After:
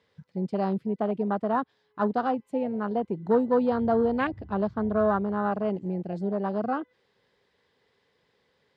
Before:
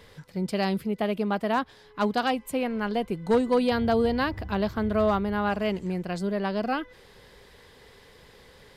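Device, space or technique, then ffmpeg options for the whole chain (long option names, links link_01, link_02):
over-cleaned archive recording: -af "highpass=120,lowpass=5600,afwtdn=0.0355"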